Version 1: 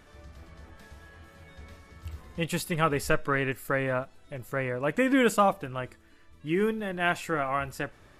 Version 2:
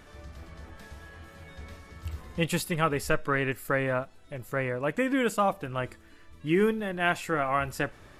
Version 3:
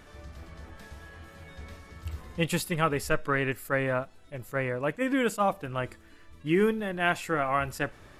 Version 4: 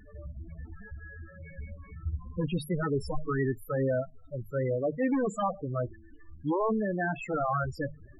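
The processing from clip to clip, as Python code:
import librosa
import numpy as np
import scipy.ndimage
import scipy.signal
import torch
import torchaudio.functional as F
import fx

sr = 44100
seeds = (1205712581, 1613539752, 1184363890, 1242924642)

y1 = fx.rider(x, sr, range_db=4, speed_s=0.5)
y2 = fx.attack_slew(y1, sr, db_per_s=450.0)
y3 = fx.hum_notches(y2, sr, base_hz=50, count=3)
y3 = 10.0 ** (-24.0 / 20.0) * (np.abs((y3 / 10.0 ** (-24.0 / 20.0) + 3.0) % 4.0 - 2.0) - 1.0)
y3 = fx.spec_topn(y3, sr, count=8)
y3 = y3 * librosa.db_to_amplitude(4.0)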